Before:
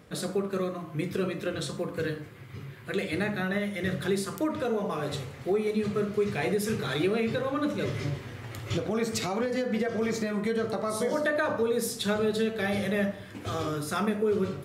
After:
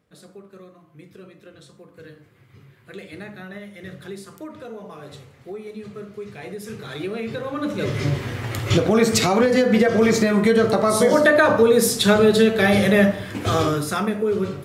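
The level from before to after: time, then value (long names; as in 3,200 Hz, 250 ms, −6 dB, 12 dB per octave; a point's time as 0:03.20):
0:01.89 −14 dB
0:02.38 −7.5 dB
0:06.40 −7.5 dB
0:07.58 +2 dB
0:08.24 +12 dB
0:13.59 +12 dB
0:14.04 +4.5 dB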